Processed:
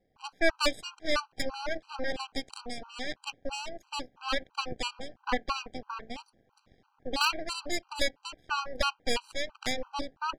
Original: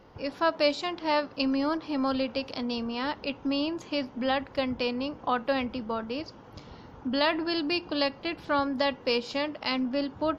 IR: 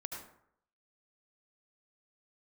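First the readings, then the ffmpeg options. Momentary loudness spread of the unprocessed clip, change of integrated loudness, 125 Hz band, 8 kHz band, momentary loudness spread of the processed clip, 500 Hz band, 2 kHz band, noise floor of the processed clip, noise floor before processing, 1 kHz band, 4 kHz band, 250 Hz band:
8 LU, −4.0 dB, −4.0 dB, can't be measured, 13 LU, −6.5 dB, 0.0 dB, −73 dBFS, −50 dBFS, −3.5 dB, −1.5 dB, −12.0 dB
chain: -af "aeval=exprs='0.266*(cos(1*acos(clip(val(0)/0.266,-1,1)))-cos(1*PI/2))+0.0841*(cos(3*acos(clip(val(0)/0.266,-1,1)))-cos(3*PI/2))+0.0266*(cos(6*acos(clip(val(0)/0.266,-1,1)))-cos(6*PI/2))':channel_layout=same,afftfilt=real='re*gt(sin(2*PI*3*pts/sr)*(1-2*mod(floor(b*sr/1024/790),2)),0)':imag='im*gt(sin(2*PI*3*pts/sr)*(1-2*mod(floor(b*sr/1024/790),2)),0)':win_size=1024:overlap=0.75,volume=7dB"

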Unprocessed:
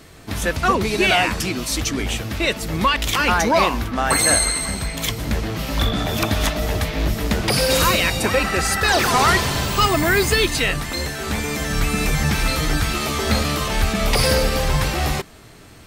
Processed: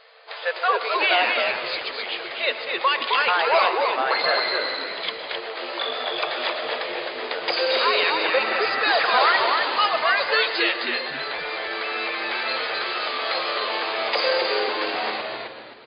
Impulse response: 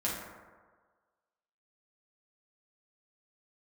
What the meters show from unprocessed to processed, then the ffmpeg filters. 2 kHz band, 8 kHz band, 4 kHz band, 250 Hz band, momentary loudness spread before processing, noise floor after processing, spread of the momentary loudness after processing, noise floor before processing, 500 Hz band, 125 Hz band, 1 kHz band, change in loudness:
−0.5 dB, below −40 dB, −1.5 dB, −14.5 dB, 8 LU, −36 dBFS, 10 LU, −43 dBFS, −2.0 dB, below −30 dB, −0.5 dB, −3.0 dB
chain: -filter_complex "[0:a]asplit=2[link_01][link_02];[1:a]atrim=start_sample=2205,adelay=108[link_03];[link_02][link_03]afir=irnorm=-1:irlink=0,volume=-17.5dB[link_04];[link_01][link_04]amix=inputs=2:normalize=0,afftfilt=real='re*between(b*sr/4096,440,5000)':imag='im*between(b*sr/4096,440,5000)':win_size=4096:overlap=0.75,asplit=5[link_05][link_06][link_07][link_08][link_09];[link_06]adelay=262,afreqshift=-100,volume=-4dB[link_10];[link_07]adelay=524,afreqshift=-200,volume=-14.2dB[link_11];[link_08]adelay=786,afreqshift=-300,volume=-24.3dB[link_12];[link_09]adelay=1048,afreqshift=-400,volume=-34.5dB[link_13];[link_05][link_10][link_11][link_12][link_13]amix=inputs=5:normalize=0,volume=-2.5dB"

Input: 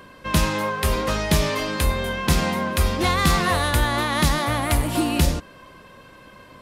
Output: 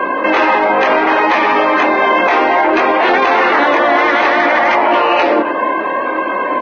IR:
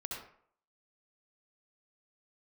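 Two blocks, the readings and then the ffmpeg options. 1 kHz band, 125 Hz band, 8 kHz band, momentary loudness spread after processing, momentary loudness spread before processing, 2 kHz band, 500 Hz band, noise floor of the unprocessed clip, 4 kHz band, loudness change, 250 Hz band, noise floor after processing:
+15.0 dB, below −15 dB, below −10 dB, 5 LU, 4 LU, +13.5 dB, +14.0 dB, −47 dBFS, +2.5 dB, +10.0 dB, +7.0 dB, −18 dBFS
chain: -filter_complex "[0:a]asplit=2[link_01][link_02];[link_02]acompressor=threshold=-30dB:ratio=4,volume=2dB[link_03];[link_01][link_03]amix=inputs=2:normalize=0,flanger=delay=20:depth=7.7:speed=0.62,afftfilt=real='re*lt(hypot(re,im),0.224)':imag='im*lt(hypot(re,im),0.224)':win_size=1024:overlap=0.75,highpass=frequency=280:width=0.5412,highpass=frequency=280:width=1.3066,equalizer=frequency=320:width_type=q:width=4:gain=5,equalizer=frequency=460:width_type=q:width=4:gain=-5,equalizer=frequency=1400:width_type=q:width=4:gain=-4,lowpass=frequency=2400:width=0.5412,lowpass=frequency=2400:width=1.3066,acontrast=33,asplit=2[link_04][link_05];[link_05]adelay=271,lowpass=frequency=1200:poles=1,volume=-17.5dB,asplit=2[link_06][link_07];[link_07]adelay=271,lowpass=frequency=1200:poles=1,volume=0.26[link_08];[link_04][link_06][link_08]amix=inputs=3:normalize=0,asoftclip=type=tanh:threshold=-18dB,equalizer=frequency=750:width_type=o:width=2.8:gain=9.5,bandreject=frequency=60:width_type=h:width=6,bandreject=frequency=120:width_type=h:width=6,bandreject=frequency=180:width_type=h:width=6,bandreject=frequency=240:width_type=h:width=6,bandreject=frequency=300:width_type=h:width=6,bandreject=frequency=360:width_type=h:width=6,alimiter=level_in=18dB:limit=-1dB:release=50:level=0:latency=1,volume=-3.5dB" -ar 16000 -c:a libvorbis -b:a 16k

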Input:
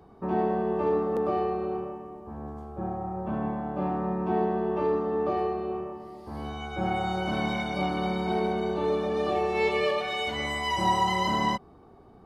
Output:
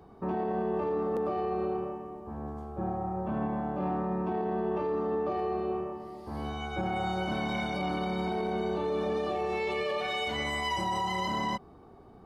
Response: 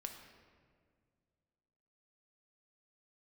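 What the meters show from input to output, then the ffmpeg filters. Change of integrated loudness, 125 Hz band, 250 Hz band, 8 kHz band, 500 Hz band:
−4.0 dB, −2.5 dB, −3.0 dB, can't be measured, −3.5 dB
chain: -af "alimiter=limit=-23.5dB:level=0:latency=1:release=28"

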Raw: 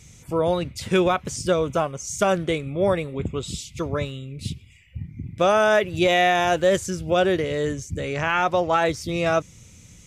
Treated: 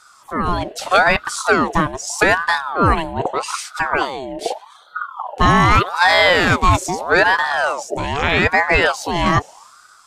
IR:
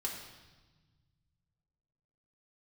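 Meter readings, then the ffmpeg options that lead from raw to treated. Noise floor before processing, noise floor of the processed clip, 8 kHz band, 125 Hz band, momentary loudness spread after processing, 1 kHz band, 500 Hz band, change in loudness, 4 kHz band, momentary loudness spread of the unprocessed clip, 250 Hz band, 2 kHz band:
−49 dBFS, −48 dBFS, +5.0 dB, +5.5 dB, 13 LU, +8.5 dB, +0.5 dB, +6.0 dB, +8.0 dB, 15 LU, +3.5 dB, +11.0 dB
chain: -af "dynaudnorm=framelen=120:gausssize=9:maxgain=8dB,aeval=exprs='val(0)*sin(2*PI*910*n/s+910*0.5/0.81*sin(2*PI*0.81*n/s))':channel_layout=same,volume=2dB"

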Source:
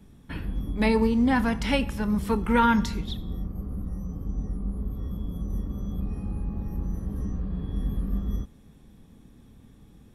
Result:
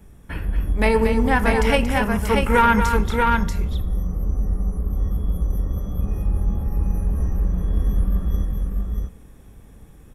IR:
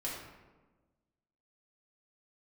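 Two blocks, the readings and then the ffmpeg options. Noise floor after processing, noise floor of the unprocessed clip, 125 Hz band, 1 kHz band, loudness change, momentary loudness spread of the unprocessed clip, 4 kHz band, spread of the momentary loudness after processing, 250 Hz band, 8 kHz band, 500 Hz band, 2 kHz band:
−46 dBFS, −53 dBFS, +8.0 dB, +8.0 dB, +6.0 dB, 13 LU, +4.5 dB, 9 LU, +1.5 dB, +8.5 dB, +8.0 dB, +9.0 dB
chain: -af "equalizer=frequency=125:width_type=o:width=1:gain=-5,equalizer=frequency=250:width_type=o:width=1:gain=-10,equalizer=frequency=1000:width_type=o:width=1:gain=-3,equalizer=frequency=4000:width_type=o:width=1:gain=-11,aeval=exprs='0.251*(cos(1*acos(clip(val(0)/0.251,-1,1)))-cos(1*PI/2))+0.0562*(cos(2*acos(clip(val(0)/0.251,-1,1)))-cos(2*PI/2))':channel_layout=same,aecho=1:1:231|636:0.398|0.668,volume=9dB"

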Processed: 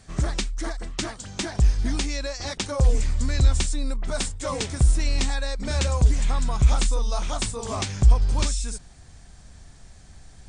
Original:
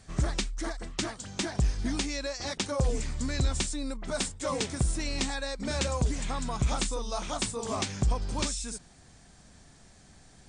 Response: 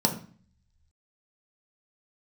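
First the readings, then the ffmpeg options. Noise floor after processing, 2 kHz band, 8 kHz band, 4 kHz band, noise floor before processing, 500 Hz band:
−48 dBFS, +3.0 dB, +3.0 dB, +3.0 dB, −56 dBFS, +2.0 dB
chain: -af "asubboost=boost=3:cutoff=110,volume=3dB"

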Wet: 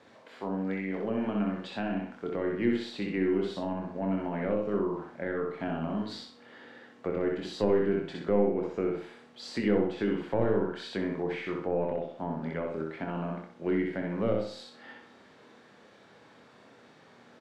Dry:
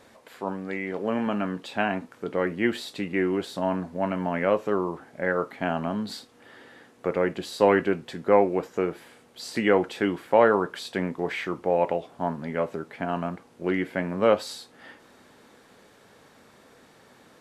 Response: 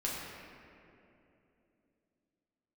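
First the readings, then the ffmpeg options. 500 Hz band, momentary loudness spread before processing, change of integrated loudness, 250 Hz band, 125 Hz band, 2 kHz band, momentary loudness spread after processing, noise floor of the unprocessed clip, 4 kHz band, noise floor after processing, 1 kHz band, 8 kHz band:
−5.5 dB, 12 LU, −5.0 dB, −2.0 dB, −1.5 dB, −9.0 dB, 11 LU, −56 dBFS, −6.0 dB, −57 dBFS, −10.0 dB, below −10 dB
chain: -filter_complex "[0:a]highpass=100,lowpass=4900,aeval=exprs='0.562*(cos(1*acos(clip(val(0)/0.562,-1,1)))-cos(1*PI/2))+0.141*(cos(2*acos(clip(val(0)/0.562,-1,1)))-cos(2*PI/2))+0.0112*(cos(4*acos(clip(val(0)/0.562,-1,1)))-cos(4*PI/2))':channel_layout=same,asplit=2[link_01][link_02];[link_02]adelay=25,volume=-6.5dB[link_03];[link_01][link_03]amix=inputs=2:normalize=0,asplit=2[link_04][link_05];[link_05]aecho=0:1:63|126|189|252|315:0.708|0.248|0.0867|0.0304|0.0106[link_06];[link_04][link_06]amix=inputs=2:normalize=0,acrossover=split=440[link_07][link_08];[link_08]acompressor=threshold=-33dB:ratio=5[link_09];[link_07][link_09]amix=inputs=2:normalize=0,volume=-4dB"

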